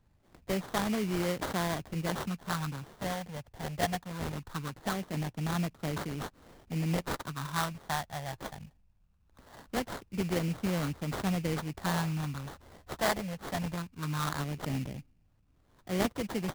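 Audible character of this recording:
phaser sweep stages 6, 0.21 Hz, lowest notch 330–1,900 Hz
aliases and images of a low sample rate 2,600 Hz, jitter 20%

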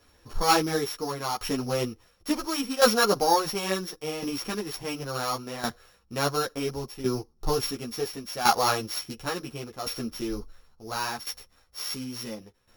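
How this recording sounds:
a buzz of ramps at a fixed pitch in blocks of 8 samples
tremolo saw down 0.71 Hz, depth 75%
a shimmering, thickened sound

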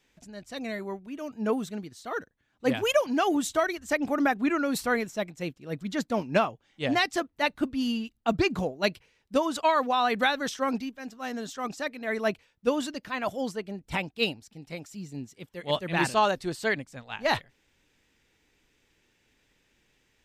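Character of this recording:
background noise floor −71 dBFS
spectral slope −4.5 dB per octave

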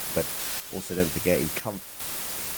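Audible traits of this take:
a quantiser's noise floor 6 bits, dither triangular
chopped level 1 Hz, depth 65%, duty 60%
Opus

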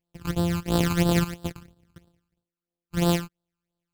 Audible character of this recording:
a buzz of ramps at a fixed pitch in blocks of 256 samples
phaser sweep stages 12, 3 Hz, lowest notch 580–2,200 Hz

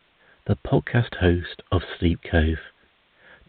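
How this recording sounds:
a quantiser's noise floor 10 bits, dither triangular
mu-law

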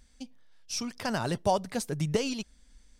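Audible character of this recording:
background noise floor −61 dBFS
spectral slope −4.5 dB per octave

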